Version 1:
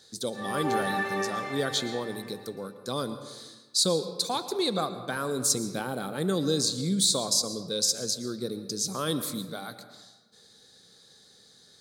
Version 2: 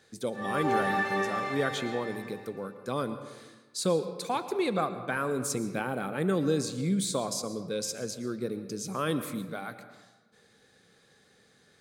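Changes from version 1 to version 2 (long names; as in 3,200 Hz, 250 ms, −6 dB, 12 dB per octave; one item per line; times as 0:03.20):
speech: add high shelf with overshoot 3,200 Hz −7.5 dB, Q 3
background: send +7.0 dB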